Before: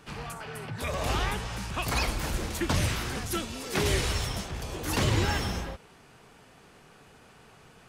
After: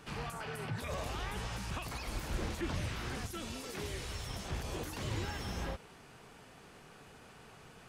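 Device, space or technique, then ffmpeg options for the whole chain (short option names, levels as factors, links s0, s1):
de-esser from a sidechain: -filter_complex "[0:a]asettb=1/sr,asplit=3[s0][s1][s2];[s0]atrim=end=2.284[s3];[s1]atrim=start=2.28:end=3.15,asetpts=PTS-STARTPTS,afade=t=in:d=0.004:c=qsin,afade=t=out:st=0.866:d=0.004:c=qsin,highshelf=f=6800:g=-9.5[s4];[s2]atrim=start=3.146[s5];[s3][s4]acrossfade=d=0.004:c1=hsin:c2=qsin[s6];[s6][s5]acrossfade=d=0.004:c1=qsin:c2=hsin,asplit=2[s7][s8];[s8]highpass=f=5100:p=1,apad=whole_len=347594[s9];[s7][s9]sidechaincompress=threshold=0.00562:ratio=12:attack=1:release=39,volume=0.891"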